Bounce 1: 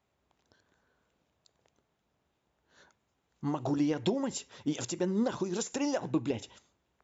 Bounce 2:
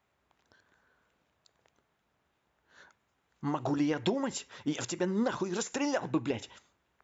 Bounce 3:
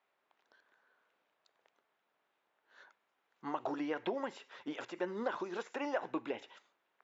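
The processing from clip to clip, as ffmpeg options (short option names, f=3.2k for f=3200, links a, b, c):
-af "equalizer=f=1.6k:t=o:w=1.8:g=7,volume=-1dB"
-filter_complex "[0:a]highpass=410,lowpass=4.2k,acrossover=split=2800[a][b];[b]acompressor=threshold=-56dB:ratio=4:attack=1:release=60[c];[a][c]amix=inputs=2:normalize=0,volume=-2.5dB"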